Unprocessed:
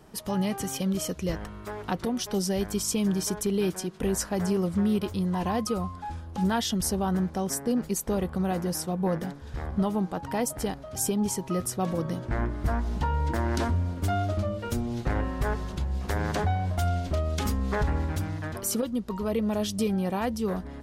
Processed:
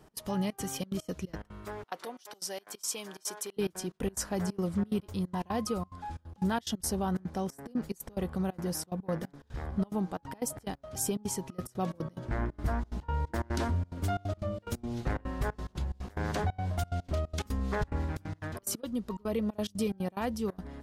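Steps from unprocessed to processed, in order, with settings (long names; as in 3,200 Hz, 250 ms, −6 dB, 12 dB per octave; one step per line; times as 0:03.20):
0:01.84–0:03.57: high-pass filter 610 Hz 12 dB per octave
gate pattern "x.xxxx.xxx.x.xx." 180 BPM −24 dB
level −4 dB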